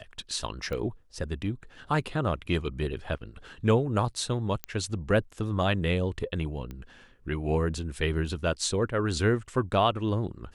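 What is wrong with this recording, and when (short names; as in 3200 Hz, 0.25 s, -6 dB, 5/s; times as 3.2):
0.73 pop -22 dBFS
4.64 pop -15 dBFS
6.71 pop -26 dBFS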